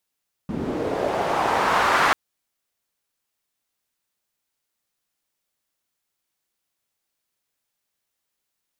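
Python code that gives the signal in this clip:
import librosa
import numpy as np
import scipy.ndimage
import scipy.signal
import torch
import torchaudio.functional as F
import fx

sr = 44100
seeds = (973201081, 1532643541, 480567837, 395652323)

y = fx.riser_noise(sr, seeds[0], length_s=1.64, colour='pink', kind='bandpass', start_hz=200.0, end_hz=1300.0, q=1.8, swell_db=10.5, law='linear')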